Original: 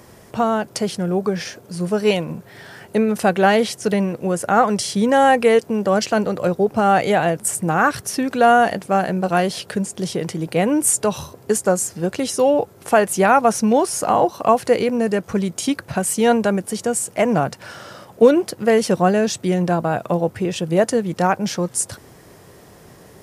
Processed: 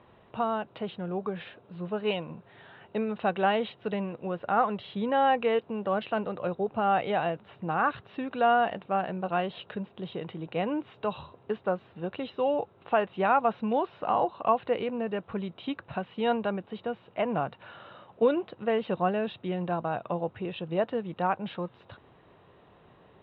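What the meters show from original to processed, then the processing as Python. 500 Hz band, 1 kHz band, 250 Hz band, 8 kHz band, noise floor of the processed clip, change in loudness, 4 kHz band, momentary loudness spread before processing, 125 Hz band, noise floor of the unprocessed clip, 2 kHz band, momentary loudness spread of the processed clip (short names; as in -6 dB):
-11.5 dB, -9.0 dB, -13.0 dB, under -40 dB, -59 dBFS, -11.5 dB, -12.0 dB, 9 LU, -13.5 dB, -46 dBFS, -11.5 dB, 12 LU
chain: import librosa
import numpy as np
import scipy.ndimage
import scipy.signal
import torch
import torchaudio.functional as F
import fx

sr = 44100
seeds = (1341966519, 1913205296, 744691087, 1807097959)

y = scipy.signal.sosfilt(scipy.signal.cheby1(6, 6, 3900.0, 'lowpass', fs=sr, output='sos'), x)
y = y * librosa.db_to_amplitude(-7.5)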